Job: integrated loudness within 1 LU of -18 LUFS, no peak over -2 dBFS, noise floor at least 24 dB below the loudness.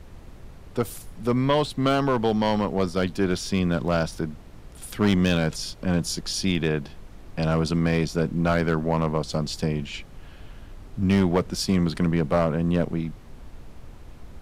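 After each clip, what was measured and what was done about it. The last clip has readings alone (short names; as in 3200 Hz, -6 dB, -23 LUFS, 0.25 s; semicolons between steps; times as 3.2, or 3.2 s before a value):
clipped 0.6%; flat tops at -13.0 dBFS; noise floor -45 dBFS; noise floor target -49 dBFS; loudness -24.5 LUFS; peak -13.0 dBFS; loudness target -18.0 LUFS
-> clip repair -13 dBFS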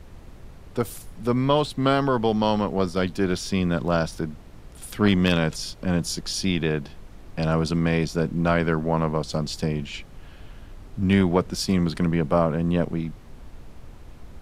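clipped 0.0%; noise floor -45 dBFS; noise floor target -48 dBFS
-> noise print and reduce 6 dB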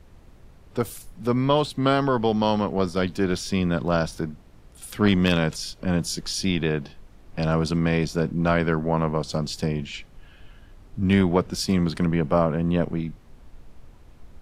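noise floor -50 dBFS; loudness -24.0 LUFS; peak -4.0 dBFS; loudness target -18.0 LUFS
-> gain +6 dB; limiter -2 dBFS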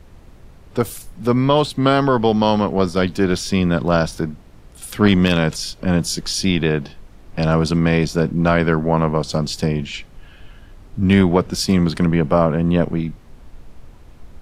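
loudness -18.0 LUFS; peak -2.0 dBFS; noise floor -44 dBFS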